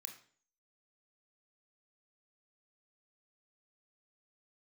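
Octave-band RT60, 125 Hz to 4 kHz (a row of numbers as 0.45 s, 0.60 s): 0.50 s, 0.55 s, 0.50 s, 0.45 s, 0.45 s, 0.45 s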